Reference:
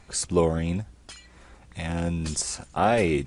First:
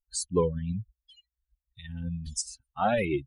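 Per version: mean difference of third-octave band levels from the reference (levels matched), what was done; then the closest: 15.0 dB: per-bin expansion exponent 3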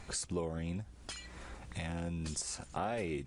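6.0 dB: compressor 3:1, threshold -42 dBFS, peak gain reduction 18.5 dB; gain +2 dB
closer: second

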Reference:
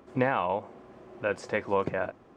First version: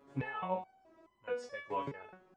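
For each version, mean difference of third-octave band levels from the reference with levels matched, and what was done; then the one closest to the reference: 6.0 dB: stepped resonator 4.7 Hz 140–1000 Hz; gain +3.5 dB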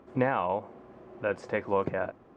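1.5 dB: high shelf 3400 Hz -10.5 dB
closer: second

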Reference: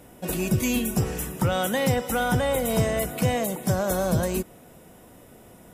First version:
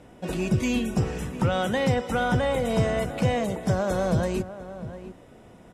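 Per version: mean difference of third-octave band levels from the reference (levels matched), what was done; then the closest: 4.5 dB: air absorption 86 m; outdoor echo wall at 120 m, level -13 dB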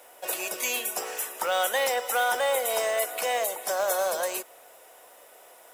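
9.5 dB: HPF 540 Hz 24 dB/oct; in parallel at -5.5 dB: companded quantiser 4-bit; on the sum: gain -2 dB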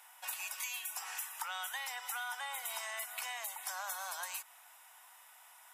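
17.5 dB: elliptic high-pass 860 Hz, stop band 60 dB; compressor, threshold -36 dBFS, peak gain reduction 10 dB; gain -1.5 dB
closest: first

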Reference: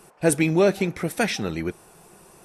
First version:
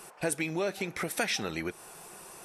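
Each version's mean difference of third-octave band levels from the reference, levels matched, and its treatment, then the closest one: 7.0 dB: compressor 5:1, threshold -29 dBFS, peak gain reduction 14 dB; low shelf 430 Hz -11.5 dB; gain +5 dB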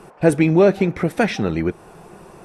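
4.0 dB: LPF 1600 Hz 6 dB/oct; in parallel at +0.5 dB: compressor, threshold -32 dBFS, peak gain reduction 16.5 dB; on the sum: gain +4 dB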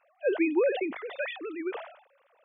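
15.0 dB: sine-wave speech; sustainer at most 93 dB/s; gain -7.5 dB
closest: second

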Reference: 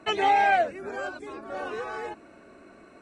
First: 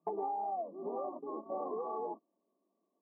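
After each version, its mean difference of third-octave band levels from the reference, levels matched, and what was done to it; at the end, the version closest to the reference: 10.5 dB: gate -39 dBFS, range -30 dB; FFT band-pass 170–1200 Hz; compressor 16:1, threshold -34 dBFS, peak gain reduction 16.5 dB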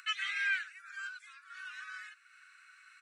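14.0 dB: upward compressor, threshold -38 dBFS; steep high-pass 1300 Hz 72 dB/oct; on a send: echo 98 ms -23.5 dB; on the sum: gain -4 dB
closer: first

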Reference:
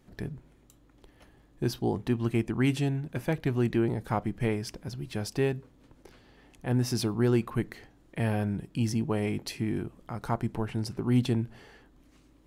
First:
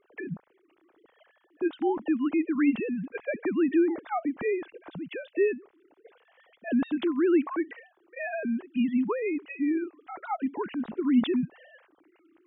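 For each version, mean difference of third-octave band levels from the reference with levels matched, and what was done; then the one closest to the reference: 13.5 dB: sine-wave speech; in parallel at 0 dB: limiter -24 dBFS, peak gain reduction 11 dB; on the sum: gain -3 dB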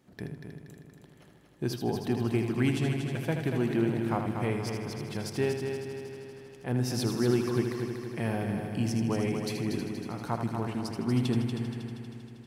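7.5 dB: HPF 100 Hz; on a send: multi-head echo 79 ms, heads first and third, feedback 70%, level -7.5 dB; on the sum: gain -2 dB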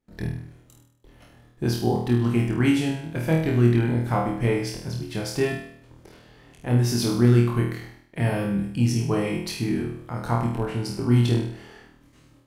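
4.5 dB: gate with hold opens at -50 dBFS; flutter echo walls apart 4.3 m, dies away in 0.63 s; gain +2.5 dB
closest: third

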